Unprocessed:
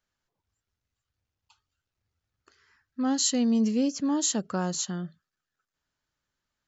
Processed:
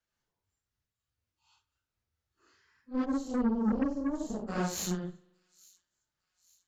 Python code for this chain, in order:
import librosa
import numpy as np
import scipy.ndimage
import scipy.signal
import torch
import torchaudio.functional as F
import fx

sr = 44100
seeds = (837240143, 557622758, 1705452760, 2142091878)

p1 = fx.phase_scramble(x, sr, seeds[0], window_ms=200)
p2 = fx.curve_eq(p1, sr, hz=(190.0, 640.0, 1500.0), db=(0, -4, -23), at=(3.04, 4.47), fade=0.02)
p3 = fx.cheby_harmonics(p2, sr, harmonics=(8,), levels_db=(-17,), full_scale_db=-15.0)
p4 = p3 + fx.echo_wet_highpass(p3, sr, ms=857, feedback_pct=45, hz=3800.0, wet_db=-23, dry=0)
p5 = fx.rev_spring(p4, sr, rt60_s=1.1, pass_ms=(44,), chirp_ms=60, drr_db=18.5)
p6 = fx.am_noise(p5, sr, seeds[1], hz=5.7, depth_pct=55)
y = F.gain(torch.from_numpy(p6), -1.0).numpy()